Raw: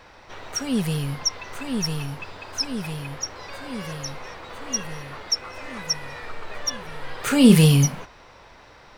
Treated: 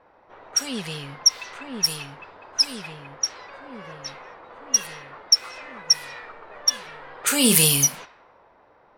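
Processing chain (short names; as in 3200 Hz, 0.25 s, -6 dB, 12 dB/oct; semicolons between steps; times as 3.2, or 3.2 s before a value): RIAA curve recording; low-pass opened by the level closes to 770 Hz, open at -16 dBFS; gain -1.5 dB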